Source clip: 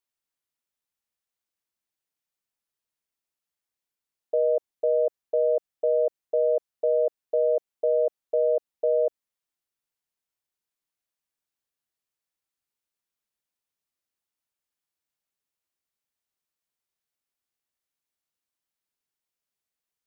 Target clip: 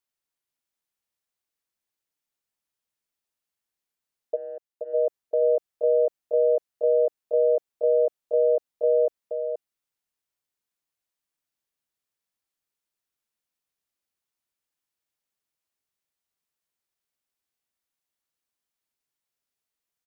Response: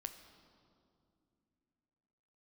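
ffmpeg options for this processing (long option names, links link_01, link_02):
-filter_complex "[0:a]asplit=3[link_01][link_02][link_03];[link_01]afade=type=out:start_time=4.35:duration=0.02[link_04];[link_02]agate=range=-40dB:threshold=-19dB:ratio=16:detection=peak,afade=type=in:start_time=4.35:duration=0.02,afade=type=out:start_time=4.93:duration=0.02[link_05];[link_03]afade=type=in:start_time=4.93:duration=0.02[link_06];[link_04][link_05][link_06]amix=inputs=3:normalize=0,aecho=1:1:477:0.473"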